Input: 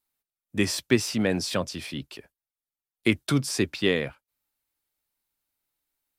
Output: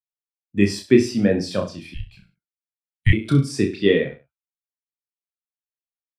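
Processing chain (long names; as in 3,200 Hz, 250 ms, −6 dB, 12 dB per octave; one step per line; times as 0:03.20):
reverse bouncing-ball delay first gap 30 ms, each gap 1.1×, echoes 5
0:01.94–0:03.13: frequency shifter −240 Hz
every bin expanded away from the loudest bin 1.5 to 1
level +5.5 dB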